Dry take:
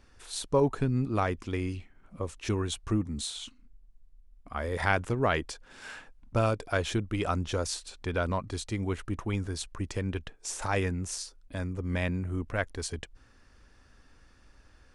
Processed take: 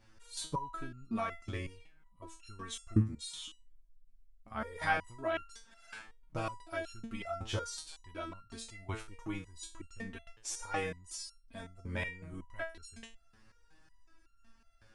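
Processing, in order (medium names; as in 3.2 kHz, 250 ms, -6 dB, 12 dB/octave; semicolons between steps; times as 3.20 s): band-stop 460 Hz, Q 12; resonator arpeggio 5.4 Hz 110–1400 Hz; trim +7 dB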